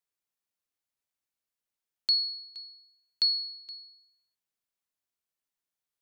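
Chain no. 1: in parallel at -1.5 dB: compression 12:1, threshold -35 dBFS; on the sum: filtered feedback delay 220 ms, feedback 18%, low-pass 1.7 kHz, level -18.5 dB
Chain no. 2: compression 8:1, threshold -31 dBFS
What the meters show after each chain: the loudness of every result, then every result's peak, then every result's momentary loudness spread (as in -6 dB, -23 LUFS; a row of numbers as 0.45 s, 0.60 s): -26.5 LUFS, -36.0 LUFS; -12.5 dBFS, -18.0 dBFS; 15 LU, 14 LU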